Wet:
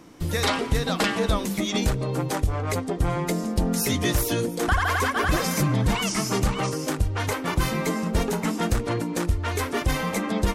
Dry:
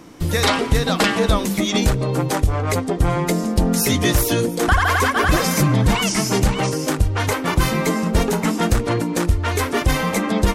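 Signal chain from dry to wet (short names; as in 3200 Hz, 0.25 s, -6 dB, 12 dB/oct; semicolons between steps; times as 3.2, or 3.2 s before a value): 6.05–6.85 bell 1200 Hz +7.5 dB 0.2 oct; gain -6 dB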